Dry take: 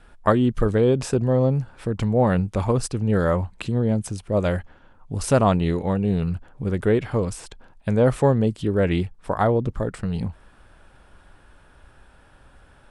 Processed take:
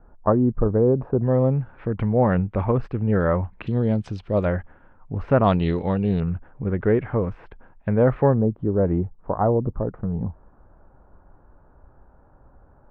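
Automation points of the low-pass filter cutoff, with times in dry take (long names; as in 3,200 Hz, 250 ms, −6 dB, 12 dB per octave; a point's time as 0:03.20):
low-pass filter 24 dB per octave
1,100 Hz
from 0:01.22 2,300 Hz
from 0:03.67 4,200 Hz
from 0:04.45 2,100 Hz
from 0:05.44 4,500 Hz
from 0:06.20 2,100 Hz
from 0:08.34 1,100 Hz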